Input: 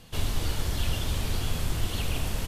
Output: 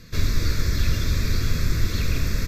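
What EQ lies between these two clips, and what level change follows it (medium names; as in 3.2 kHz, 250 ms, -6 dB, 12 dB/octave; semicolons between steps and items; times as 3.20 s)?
peaking EQ 2.4 kHz +2.5 dB; static phaser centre 3 kHz, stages 6; +7.0 dB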